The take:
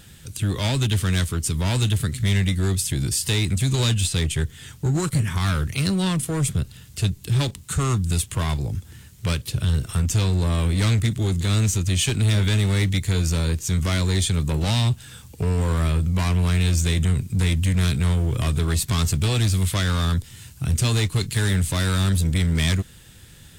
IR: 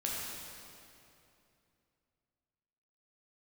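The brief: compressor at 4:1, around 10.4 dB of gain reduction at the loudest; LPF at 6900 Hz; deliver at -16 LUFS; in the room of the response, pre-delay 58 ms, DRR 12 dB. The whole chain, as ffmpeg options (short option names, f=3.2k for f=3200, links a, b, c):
-filter_complex "[0:a]lowpass=6.9k,acompressor=threshold=-30dB:ratio=4,asplit=2[a][b];[1:a]atrim=start_sample=2205,adelay=58[c];[b][c]afir=irnorm=-1:irlink=0,volume=-16dB[d];[a][d]amix=inputs=2:normalize=0,volume=16dB"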